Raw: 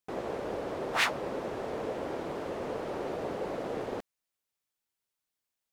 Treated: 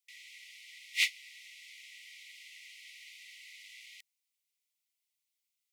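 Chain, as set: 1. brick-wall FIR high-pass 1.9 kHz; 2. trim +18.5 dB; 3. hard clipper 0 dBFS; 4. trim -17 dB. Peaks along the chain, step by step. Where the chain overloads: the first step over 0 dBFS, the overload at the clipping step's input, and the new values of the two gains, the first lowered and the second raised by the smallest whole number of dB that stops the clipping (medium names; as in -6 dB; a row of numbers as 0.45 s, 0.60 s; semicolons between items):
-15.0 dBFS, +3.5 dBFS, 0.0 dBFS, -17.0 dBFS; step 2, 3.5 dB; step 2 +14.5 dB, step 4 -13 dB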